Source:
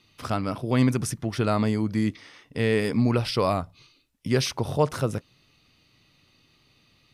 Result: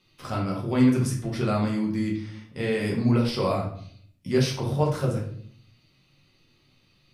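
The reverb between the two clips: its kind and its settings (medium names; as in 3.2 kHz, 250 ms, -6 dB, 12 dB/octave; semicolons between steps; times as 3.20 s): simulated room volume 76 m³, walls mixed, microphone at 1 m; trim -6.5 dB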